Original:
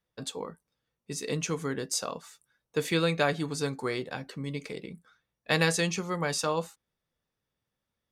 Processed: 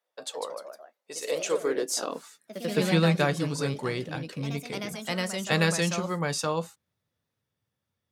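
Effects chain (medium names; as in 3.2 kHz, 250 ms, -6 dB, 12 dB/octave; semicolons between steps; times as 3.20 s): ever faster or slower copies 180 ms, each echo +2 st, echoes 3, each echo -6 dB; high-pass sweep 600 Hz -> 96 Hz, 1.23–3.55 s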